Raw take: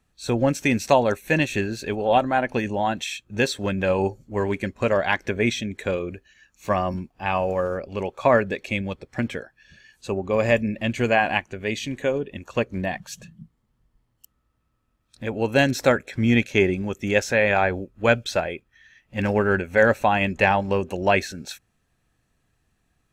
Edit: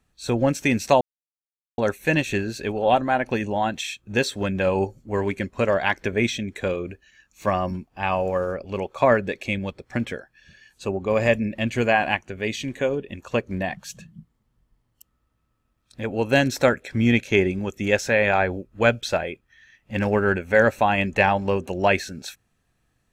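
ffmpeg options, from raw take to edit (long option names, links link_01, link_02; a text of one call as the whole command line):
ffmpeg -i in.wav -filter_complex "[0:a]asplit=2[link_01][link_02];[link_01]atrim=end=1.01,asetpts=PTS-STARTPTS,afade=type=out:start_time=1.006:duration=0.004:curve=hsin,apad=pad_dur=0.77[link_03];[link_02]atrim=start=1.01,asetpts=PTS-STARTPTS,afade=type=in:duration=0.004:curve=hsin[link_04];[link_03][link_04]concat=n=2:v=0:a=1" out.wav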